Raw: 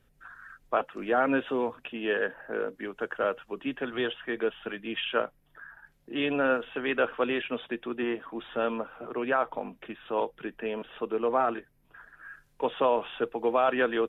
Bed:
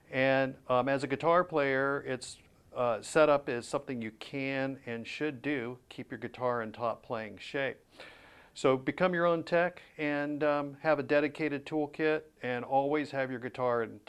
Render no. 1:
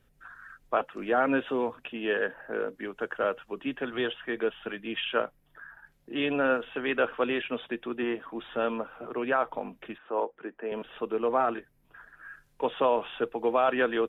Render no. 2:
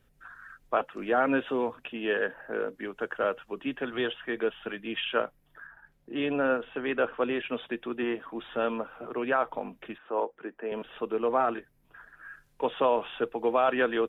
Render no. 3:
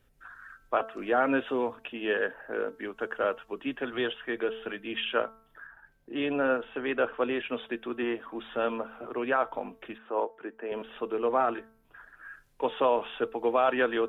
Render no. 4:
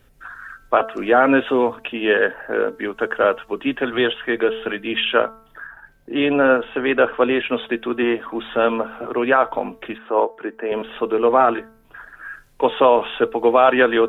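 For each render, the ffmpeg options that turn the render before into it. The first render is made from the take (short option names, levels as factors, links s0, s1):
-filter_complex "[0:a]asettb=1/sr,asplit=3[s0][s1][s2];[s0]atrim=end=9.984[s3];[s1]atrim=start=9.98:end=10.72,asetpts=PTS-STARTPTS,afade=t=in:d=0.004:c=qsin,afade=t=out:st=0.736:d=0.004:c=qsin,acrossover=split=240 2000:gain=0.112 1 0.1[s4][s5][s6];[s4][s5][s6]amix=inputs=3:normalize=0[s7];[s2]atrim=start=10.716[s8];[s3][s7]acrossfade=d=0.004:c1=hsin:c2=qsin[s9];[s9][s8]acrossfade=d=0.004:c1=qsin:c2=hsin"
-filter_complex "[0:a]asettb=1/sr,asplit=3[s0][s1][s2];[s0]atrim=end=5.674[s3];[s1]atrim=start=5.67:end=7.44,asetpts=PTS-STARTPTS,afade=t=in:d=0.004:c=qsin,afade=t=out:st=1.766:d=0.004:c=qsin,highshelf=f=2100:g=-6.5[s4];[s2]atrim=start=7.436[s5];[s3][s4]acrossfade=d=0.004:c1=hsin:c2=qsin[s6];[s6][s5]acrossfade=d=0.004:c1=qsin:c2=hsin"
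-af "equalizer=f=170:t=o:w=0.4:g=-7.5,bandreject=f=222.7:t=h:w=4,bandreject=f=445.4:t=h:w=4,bandreject=f=668.1:t=h:w=4,bandreject=f=890.8:t=h:w=4,bandreject=f=1113.5:t=h:w=4,bandreject=f=1336.2:t=h:w=4,bandreject=f=1558.9:t=h:w=4"
-af "volume=3.76,alimiter=limit=0.708:level=0:latency=1"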